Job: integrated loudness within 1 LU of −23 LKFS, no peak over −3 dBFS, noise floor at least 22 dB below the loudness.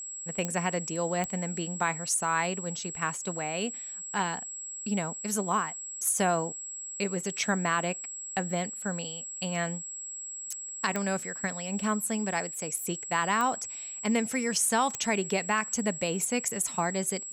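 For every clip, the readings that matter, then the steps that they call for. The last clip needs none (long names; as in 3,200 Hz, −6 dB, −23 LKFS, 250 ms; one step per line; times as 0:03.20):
number of clicks 5; interfering tone 7,700 Hz; level of the tone −37 dBFS; integrated loudness −30.0 LKFS; sample peak −14.5 dBFS; target loudness −23.0 LKFS
→ click removal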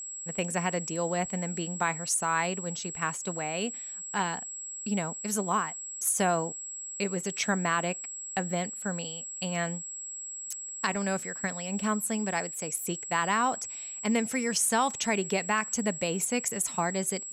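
number of clicks 0; interfering tone 7,700 Hz; level of the tone −37 dBFS
→ notch filter 7,700 Hz, Q 30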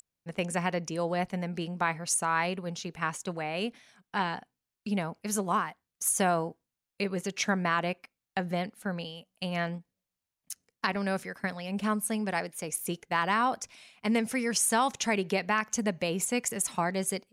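interfering tone none found; integrated loudness −30.5 LKFS; sample peak −14.0 dBFS; target loudness −23.0 LKFS
→ level +7.5 dB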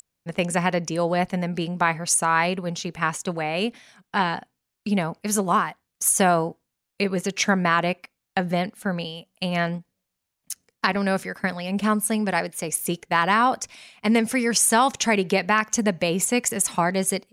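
integrated loudness −23.0 LKFS; sample peak −6.5 dBFS; background noise floor −82 dBFS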